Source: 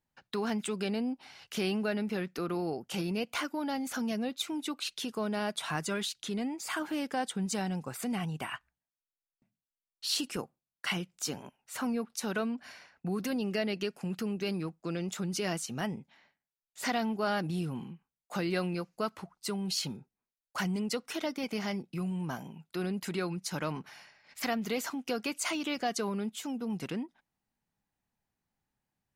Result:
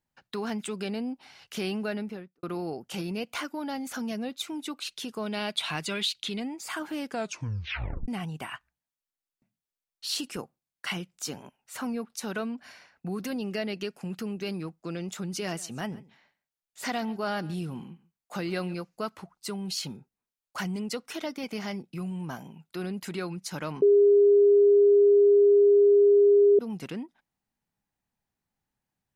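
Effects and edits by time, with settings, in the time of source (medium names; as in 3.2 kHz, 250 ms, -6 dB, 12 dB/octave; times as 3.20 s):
1.92–2.43 s: studio fade out
5.26–6.40 s: high-order bell 3.1 kHz +8.5 dB 1.3 oct
7.08 s: tape stop 1.00 s
15.26–18.74 s: delay 137 ms -21 dB
23.82–26.59 s: bleep 406 Hz -15 dBFS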